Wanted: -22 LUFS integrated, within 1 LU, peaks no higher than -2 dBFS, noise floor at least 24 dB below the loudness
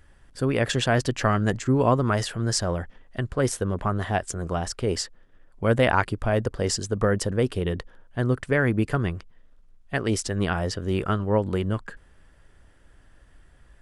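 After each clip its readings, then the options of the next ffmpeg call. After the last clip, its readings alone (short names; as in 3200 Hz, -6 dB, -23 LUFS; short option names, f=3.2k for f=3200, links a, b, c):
loudness -25.5 LUFS; peak -6.0 dBFS; loudness target -22.0 LUFS
-> -af "volume=3.5dB"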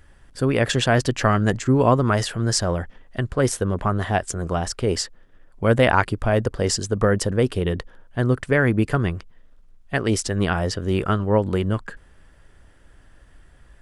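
loudness -22.0 LUFS; peak -2.5 dBFS; noise floor -52 dBFS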